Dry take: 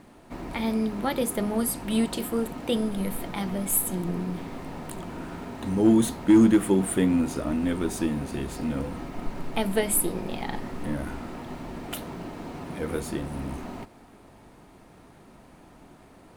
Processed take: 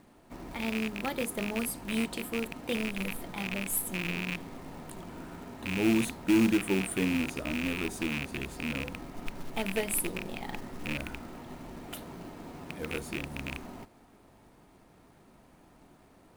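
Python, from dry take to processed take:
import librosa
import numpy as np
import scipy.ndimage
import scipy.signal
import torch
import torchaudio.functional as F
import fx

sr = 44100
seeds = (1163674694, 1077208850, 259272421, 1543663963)

y = fx.rattle_buzz(x, sr, strikes_db=-31.0, level_db=-15.0)
y = fx.quant_float(y, sr, bits=2)
y = y * 10.0 ** (-7.0 / 20.0)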